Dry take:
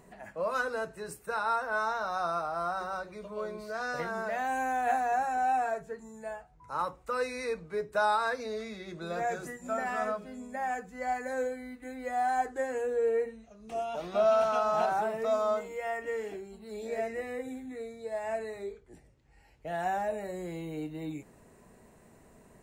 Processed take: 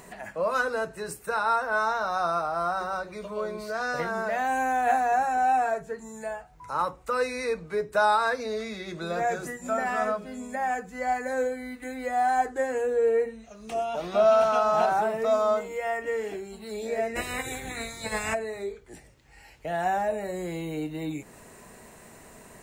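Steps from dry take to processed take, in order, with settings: 17.15–18.33 spectral limiter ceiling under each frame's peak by 28 dB; mismatched tape noise reduction encoder only; gain +5 dB

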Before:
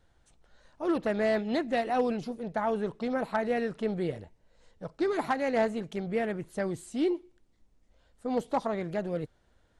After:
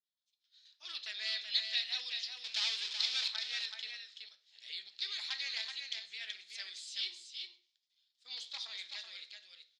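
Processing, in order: expander -54 dBFS; AGC gain up to 14.5 dB; 2.44–3.28 power-law curve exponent 0.5; 5.61–6.21 compressor, threshold -15 dBFS, peak gain reduction 6 dB; Butterworth band-pass 4200 Hz, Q 2.2; 3.91–4.89 reverse; echo 0.378 s -6 dB; reverb RT60 0.45 s, pre-delay 3 ms, DRR 9.5 dB

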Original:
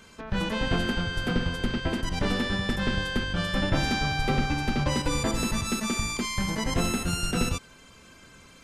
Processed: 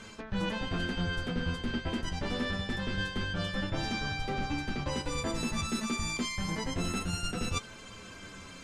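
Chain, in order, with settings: LPF 8800 Hz 12 dB/oct; reverse; compressor 6:1, threshold -35 dBFS, peak gain reduction 15 dB; reverse; flange 0.26 Hz, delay 9.1 ms, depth 4 ms, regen +39%; gain +8.5 dB

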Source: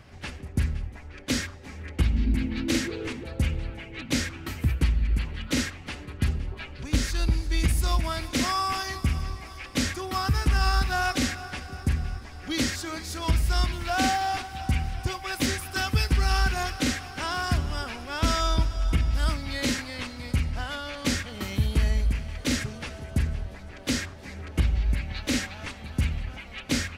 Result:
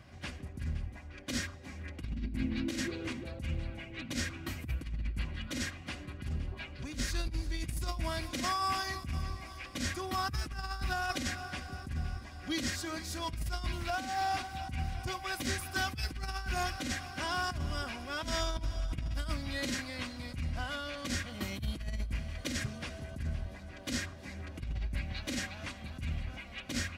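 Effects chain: notch comb 440 Hz; negative-ratio compressor -27 dBFS, ratio -0.5; gain -6 dB

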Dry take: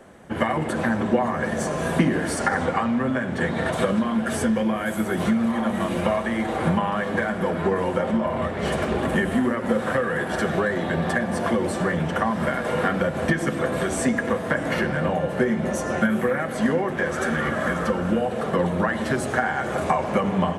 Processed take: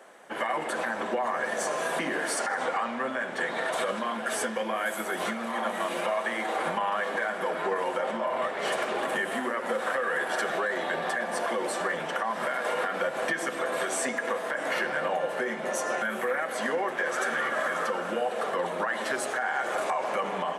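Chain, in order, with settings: HPF 560 Hz 12 dB/oct; limiter -19 dBFS, peak gain reduction 10.5 dB

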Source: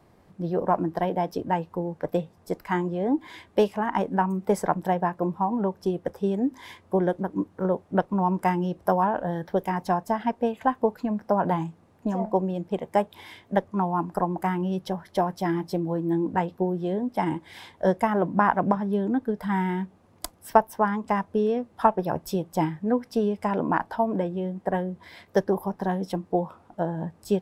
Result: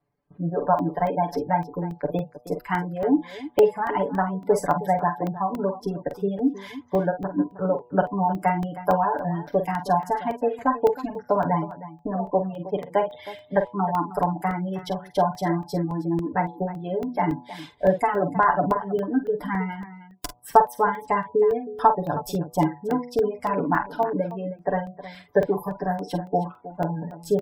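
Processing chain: tracing distortion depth 0.034 ms; gate with hold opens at -45 dBFS; comb 6.9 ms, depth 84%; reverb removal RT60 0.93 s; de-hum 121.9 Hz, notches 9; spectral gate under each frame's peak -30 dB strong; on a send: tapped delay 45/47/315 ms -17.5/-10/-15.5 dB; on the sum: crackling interface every 0.28 s, samples 64, zero, from 0.79

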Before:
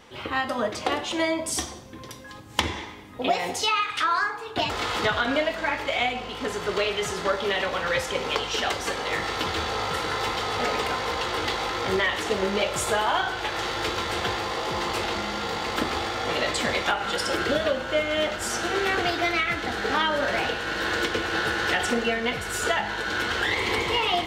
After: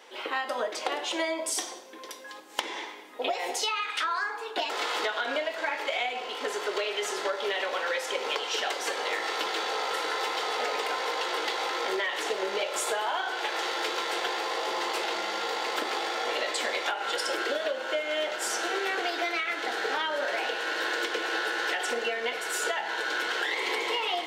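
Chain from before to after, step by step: HPF 360 Hz 24 dB/oct; notch 1200 Hz, Q 13; compressor, threshold -26 dBFS, peak gain reduction 9 dB

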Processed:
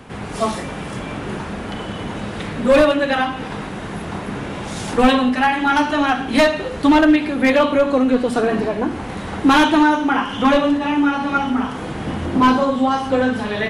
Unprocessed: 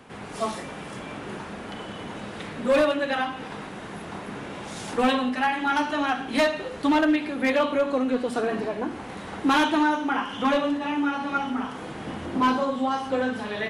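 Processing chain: low shelf 120 Hz +11.5 dB; gain +7 dB

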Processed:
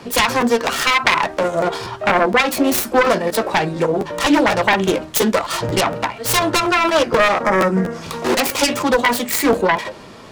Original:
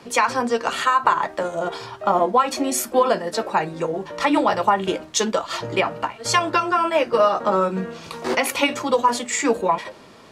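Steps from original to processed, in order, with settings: self-modulated delay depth 0.4 ms; spectral gain 7.43–8.03, 2300–4700 Hz -9 dB; in parallel at +1.5 dB: limiter -15 dBFS, peak gain reduction 10 dB; on the sum: low shelf 150 Hz +5 dB; crackling interface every 0.24 s, samples 512, repeat, from 0.4

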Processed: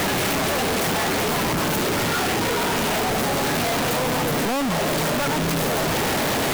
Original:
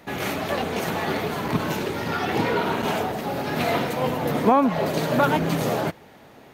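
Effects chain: infinite clipping; gain +2 dB

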